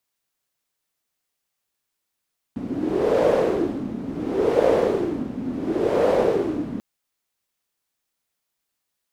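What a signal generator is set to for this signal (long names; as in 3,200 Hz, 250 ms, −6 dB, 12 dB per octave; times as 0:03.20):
wind from filtered noise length 4.24 s, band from 240 Hz, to 510 Hz, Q 4.7, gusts 3, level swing 11.5 dB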